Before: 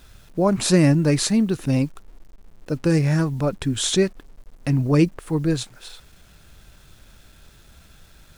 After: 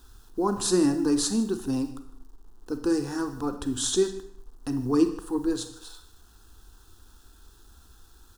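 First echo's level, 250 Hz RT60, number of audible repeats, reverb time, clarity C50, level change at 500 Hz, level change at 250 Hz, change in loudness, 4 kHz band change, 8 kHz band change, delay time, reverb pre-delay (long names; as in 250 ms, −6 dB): −19.0 dB, 0.60 s, 1, 0.60 s, 10.0 dB, −4.5 dB, −4.5 dB, −6.0 dB, −6.0 dB, −3.0 dB, 153 ms, 29 ms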